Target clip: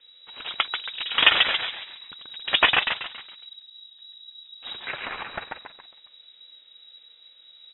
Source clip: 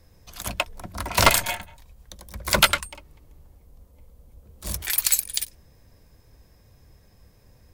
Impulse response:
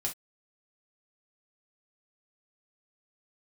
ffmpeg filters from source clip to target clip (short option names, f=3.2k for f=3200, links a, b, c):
-filter_complex "[0:a]acrossover=split=240[a][b];[a]acompressor=threshold=-37dB:ratio=10[c];[c][b]amix=inputs=2:normalize=0,asplit=6[d][e][f][g][h][i];[e]adelay=138,afreqshift=-120,volume=-4.5dB[j];[f]adelay=276,afreqshift=-240,volume=-12.2dB[k];[g]adelay=414,afreqshift=-360,volume=-20dB[l];[h]adelay=552,afreqshift=-480,volume=-27.7dB[m];[i]adelay=690,afreqshift=-600,volume=-35.5dB[n];[d][j][k][l][m][n]amix=inputs=6:normalize=0,asplit=2[o][p];[p]asetrate=29433,aresample=44100,atempo=1.49831,volume=-3dB[q];[o][q]amix=inputs=2:normalize=0,lowpass=f=3.3k:t=q:w=0.5098,lowpass=f=3.3k:t=q:w=0.6013,lowpass=f=3.3k:t=q:w=0.9,lowpass=f=3.3k:t=q:w=2.563,afreqshift=-3900,volume=-1dB"